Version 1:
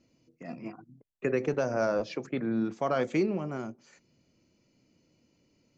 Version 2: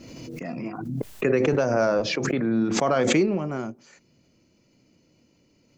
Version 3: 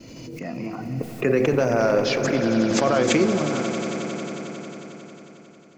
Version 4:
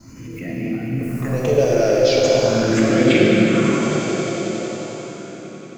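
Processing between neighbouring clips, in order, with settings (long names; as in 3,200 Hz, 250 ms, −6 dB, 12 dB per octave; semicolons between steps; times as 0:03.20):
background raised ahead of every attack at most 29 dB per second; level +5.5 dB
hum removal 80.57 Hz, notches 32; downward expander −55 dBFS; echo that builds up and dies away 90 ms, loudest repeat 5, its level −13.5 dB; level +1.5 dB
all-pass phaser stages 4, 0.4 Hz, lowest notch 170–1,100 Hz; dense smooth reverb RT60 4.7 s, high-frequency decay 0.85×, DRR −4 dB; level +2.5 dB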